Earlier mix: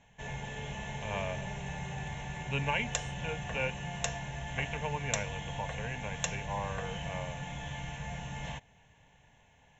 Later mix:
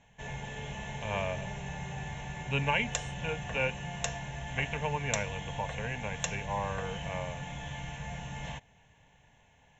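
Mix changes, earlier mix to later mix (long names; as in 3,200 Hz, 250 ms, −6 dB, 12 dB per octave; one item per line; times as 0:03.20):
speech +3.0 dB
second sound −12.0 dB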